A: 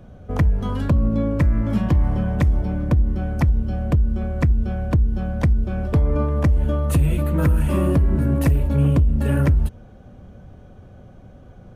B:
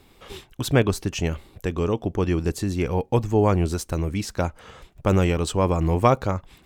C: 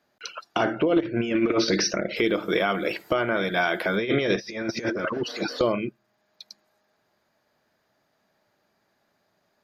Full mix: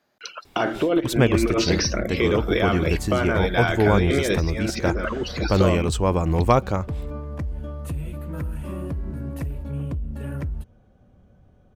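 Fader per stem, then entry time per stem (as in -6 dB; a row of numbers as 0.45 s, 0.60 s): -12.0 dB, 0.0 dB, +0.5 dB; 0.95 s, 0.45 s, 0.00 s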